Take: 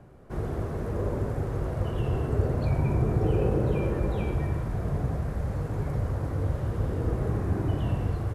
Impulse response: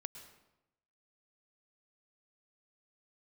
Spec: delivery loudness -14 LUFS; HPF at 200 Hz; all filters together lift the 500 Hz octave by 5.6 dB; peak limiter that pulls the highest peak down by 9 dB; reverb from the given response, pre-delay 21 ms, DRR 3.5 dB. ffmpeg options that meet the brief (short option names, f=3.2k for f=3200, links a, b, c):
-filter_complex "[0:a]highpass=200,equalizer=f=500:t=o:g=7,alimiter=limit=-21dB:level=0:latency=1,asplit=2[a][b];[1:a]atrim=start_sample=2205,adelay=21[c];[b][c]afir=irnorm=-1:irlink=0,volume=0dB[d];[a][d]amix=inputs=2:normalize=0,volume=15.5dB"